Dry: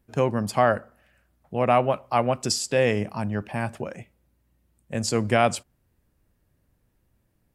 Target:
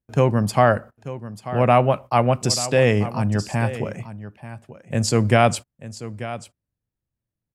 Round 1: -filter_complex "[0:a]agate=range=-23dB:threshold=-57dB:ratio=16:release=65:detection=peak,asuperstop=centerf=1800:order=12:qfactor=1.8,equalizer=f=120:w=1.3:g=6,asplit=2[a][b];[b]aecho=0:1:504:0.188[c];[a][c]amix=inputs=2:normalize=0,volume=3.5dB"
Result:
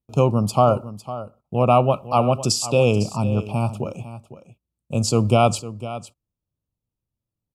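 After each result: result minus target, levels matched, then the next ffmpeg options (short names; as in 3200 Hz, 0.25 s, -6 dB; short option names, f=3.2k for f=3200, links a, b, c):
echo 0.384 s early; 2000 Hz band -7.0 dB
-filter_complex "[0:a]agate=range=-23dB:threshold=-57dB:ratio=16:release=65:detection=peak,asuperstop=centerf=1800:order=12:qfactor=1.8,equalizer=f=120:w=1.3:g=6,asplit=2[a][b];[b]aecho=0:1:888:0.188[c];[a][c]amix=inputs=2:normalize=0,volume=3.5dB"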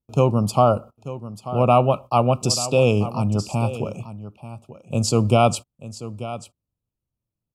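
2000 Hz band -7.0 dB
-filter_complex "[0:a]agate=range=-23dB:threshold=-57dB:ratio=16:release=65:detection=peak,equalizer=f=120:w=1.3:g=6,asplit=2[a][b];[b]aecho=0:1:888:0.188[c];[a][c]amix=inputs=2:normalize=0,volume=3.5dB"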